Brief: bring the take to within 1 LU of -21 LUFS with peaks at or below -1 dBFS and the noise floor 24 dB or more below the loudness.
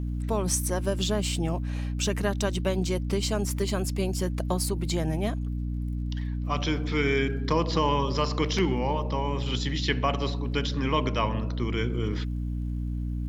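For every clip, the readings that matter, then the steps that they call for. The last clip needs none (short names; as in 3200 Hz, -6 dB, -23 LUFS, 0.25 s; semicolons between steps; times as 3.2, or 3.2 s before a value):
ticks 35/s; hum 60 Hz; harmonics up to 300 Hz; hum level -28 dBFS; loudness -28.0 LUFS; peak -11.0 dBFS; loudness target -21.0 LUFS
-> de-click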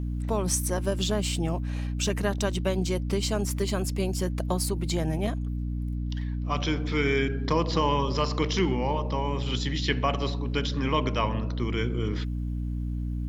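ticks 0.23/s; hum 60 Hz; harmonics up to 300 Hz; hum level -28 dBFS
-> notches 60/120/180/240/300 Hz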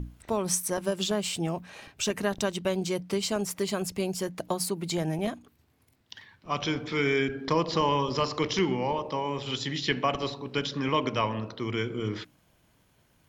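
hum none; loudness -29.5 LUFS; peak -13.0 dBFS; loudness target -21.0 LUFS
-> gain +8.5 dB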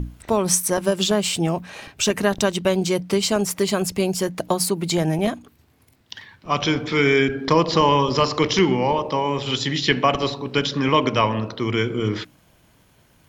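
loudness -21.0 LUFS; peak -4.5 dBFS; noise floor -58 dBFS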